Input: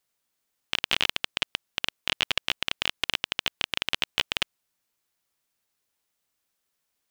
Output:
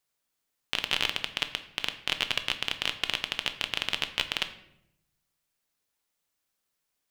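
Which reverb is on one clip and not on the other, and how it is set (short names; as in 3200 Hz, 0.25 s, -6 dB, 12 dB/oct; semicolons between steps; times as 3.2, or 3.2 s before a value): shoebox room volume 210 m³, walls mixed, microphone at 0.4 m; gain -2.5 dB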